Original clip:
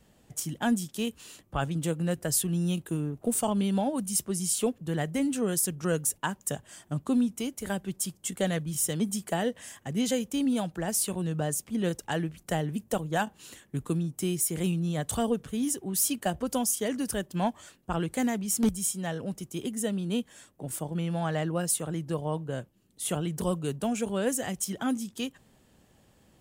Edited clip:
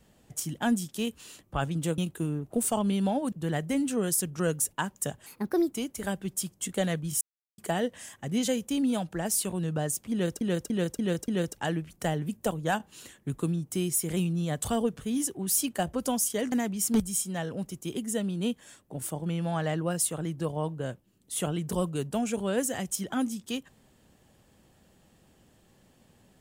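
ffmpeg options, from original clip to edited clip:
ffmpeg -i in.wav -filter_complex "[0:a]asplit=12[link_01][link_02][link_03][link_04][link_05][link_06][link_07][link_08][link_09][link_10][link_11][link_12];[link_01]atrim=end=1.982[link_13];[link_02]atrim=start=2.688:end=4.032[link_14];[link_03]atrim=start=4.768:end=6.714[link_15];[link_04]atrim=start=6.71:end=7.35,asetpts=PTS-STARTPTS,asetrate=61299,aresample=44100,atrim=end_sample=20305,asetpts=PTS-STARTPTS[link_16];[link_05]atrim=start=7.346:end=8.84,asetpts=PTS-STARTPTS,afade=type=out:start_time=1.49:duration=0.004:curve=hsin[link_17];[link_06]atrim=start=8.84:end=9.21,asetpts=PTS-STARTPTS,volume=0[link_18];[link_07]atrim=start=9.21:end=12.042,asetpts=PTS-STARTPTS,afade=type=in:duration=0.004:curve=hsin[link_19];[link_08]atrim=start=11.748:end=12.042[link_20];[link_09]atrim=start=11.748:end=12.042[link_21];[link_10]atrim=start=11.748:end=12.042[link_22];[link_11]atrim=start=11.748:end=16.992[link_23];[link_12]atrim=start=18.208[link_24];[link_13][link_14]acrossfade=duration=0.004:curve1=hsin:curve2=hsin[link_25];[link_25][link_15]acrossfade=duration=0.004:curve1=hsin:curve2=hsin[link_26];[link_26][link_16]acrossfade=duration=0.004:curve1=hsin:curve2=hsin[link_27];[link_17][link_18][link_19]concat=n=3:v=0:a=1[link_28];[link_27][link_28]acrossfade=duration=0.004:curve1=hsin:curve2=hsin[link_29];[link_29][link_20]acrossfade=duration=0.004:curve1=hsin:curve2=hsin[link_30];[link_30][link_21]acrossfade=duration=0.004:curve1=hsin:curve2=hsin[link_31];[link_31][link_22]acrossfade=duration=0.004:curve1=hsin:curve2=hsin[link_32];[link_32][link_23]acrossfade=duration=0.004:curve1=hsin:curve2=hsin[link_33];[link_33][link_24]acrossfade=duration=0.004:curve1=hsin:curve2=hsin" out.wav

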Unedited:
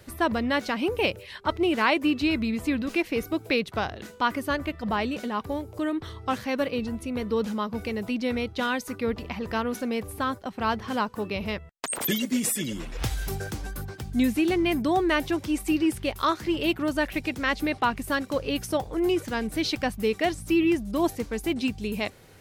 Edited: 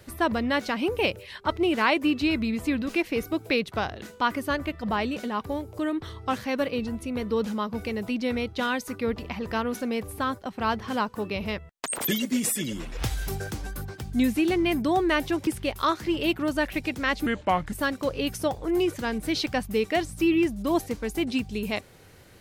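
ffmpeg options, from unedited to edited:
ffmpeg -i in.wav -filter_complex "[0:a]asplit=4[link_01][link_02][link_03][link_04];[link_01]atrim=end=15.472[link_05];[link_02]atrim=start=15.868:end=17.664[link_06];[link_03]atrim=start=17.66:end=18.01,asetpts=PTS-STARTPTS,asetrate=33516,aresample=44100,atrim=end_sample=20309,asetpts=PTS-STARTPTS[link_07];[link_04]atrim=start=18.006[link_08];[link_05][link_06]acrossfade=duration=0.004:curve1=hsin:curve2=hsin[link_09];[link_09][link_07]acrossfade=duration=0.004:curve1=hsin:curve2=hsin[link_10];[link_10][link_08]acrossfade=duration=0.004:curve1=hsin:curve2=hsin" out.wav

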